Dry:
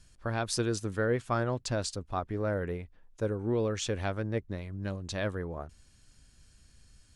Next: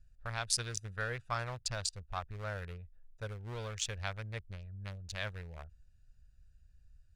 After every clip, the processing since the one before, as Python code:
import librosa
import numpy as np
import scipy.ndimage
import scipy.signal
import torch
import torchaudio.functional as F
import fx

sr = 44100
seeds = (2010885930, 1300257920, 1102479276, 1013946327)

y = fx.wiener(x, sr, points=41)
y = fx.tone_stack(y, sr, knobs='10-0-10')
y = y * librosa.db_to_amplitude(5.5)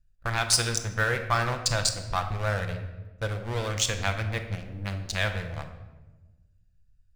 y = fx.leveller(x, sr, passes=3)
y = fx.room_shoebox(y, sr, seeds[0], volume_m3=690.0, walls='mixed', distance_m=0.74)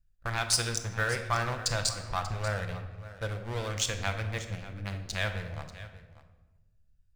y = x + 10.0 ** (-16.0 / 20.0) * np.pad(x, (int(588 * sr / 1000.0), 0))[:len(x)]
y = y * librosa.db_to_amplitude(-4.0)